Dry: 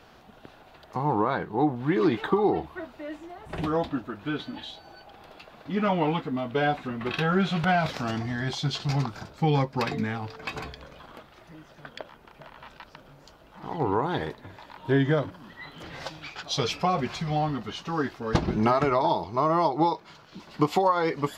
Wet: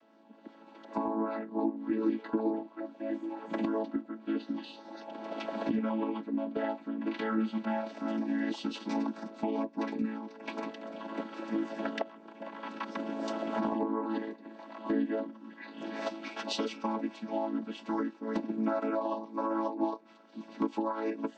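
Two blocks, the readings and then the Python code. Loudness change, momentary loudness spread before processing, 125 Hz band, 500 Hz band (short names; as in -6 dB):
-7.5 dB, 19 LU, -20.0 dB, -7.5 dB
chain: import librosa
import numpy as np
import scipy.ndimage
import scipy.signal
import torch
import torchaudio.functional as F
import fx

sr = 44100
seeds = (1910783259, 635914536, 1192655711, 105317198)

y = fx.chord_vocoder(x, sr, chord='major triad', root=57)
y = fx.recorder_agc(y, sr, target_db=-15.0, rise_db_per_s=16.0, max_gain_db=30)
y = y * librosa.db_to_amplitude(-8.5)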